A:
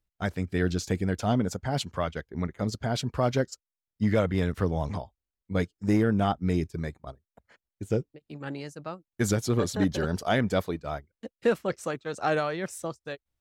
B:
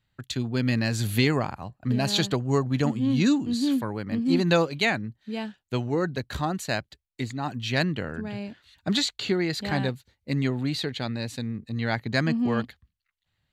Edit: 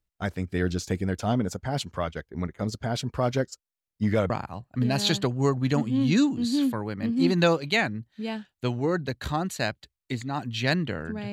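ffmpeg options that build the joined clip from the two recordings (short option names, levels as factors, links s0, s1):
-filter_complex "[0:a]apad=whole_dur=11.32,atrim=end=11.32,atrim=end=4.302[s0];[1:a]atrim=start=1.388:end=8.41[s1];[s0][s1]acrossfade=d=0.004:c1=hsin:c2=hsin"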